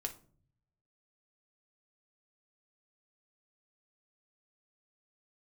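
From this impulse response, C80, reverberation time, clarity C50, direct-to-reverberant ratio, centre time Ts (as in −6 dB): 19.5 dB, 0.50 s, 14.0 dB, 3.5 dB, 9 ms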